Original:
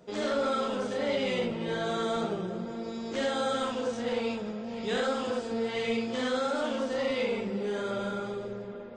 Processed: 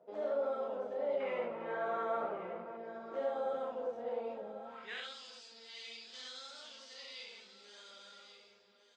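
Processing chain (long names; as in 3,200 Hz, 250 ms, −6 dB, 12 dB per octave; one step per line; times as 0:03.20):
0:01.20–0:02.77: flat-topped bell 1,600 Hz +11.5 dB
single-tap delay 1,142 ms −13 dB
band-pass filter sweep 640 Hz → 4,800 Hz, 0:04.57–0:05.19
level −2.5 dB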